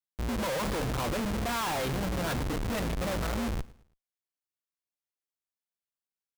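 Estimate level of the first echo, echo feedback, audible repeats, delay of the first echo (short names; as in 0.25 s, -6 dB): -21.0 dB, 36%, 2, 0.109 s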